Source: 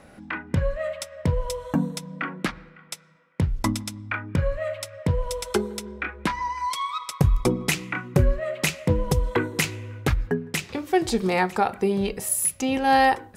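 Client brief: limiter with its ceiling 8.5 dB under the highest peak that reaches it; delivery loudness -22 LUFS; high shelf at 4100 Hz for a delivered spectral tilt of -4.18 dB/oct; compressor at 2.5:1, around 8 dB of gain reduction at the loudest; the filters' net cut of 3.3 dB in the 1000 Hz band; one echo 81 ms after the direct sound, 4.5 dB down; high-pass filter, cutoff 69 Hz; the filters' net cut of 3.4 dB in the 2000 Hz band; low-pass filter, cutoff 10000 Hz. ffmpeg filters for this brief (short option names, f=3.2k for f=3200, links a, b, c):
-af "highpass=69,lowpass=10k,equalizer=f=1k:t=o:g=-4,equalizer=f=2k:t=o:g=-5,highshelf=f=4.1k:g=8.5,acompressor=threshold=-27dB:ratio=2.5,alimiter=limit=-20.5dB:level=0:latency=1,aecho=1:1:81:0.596,volume=9.5dB"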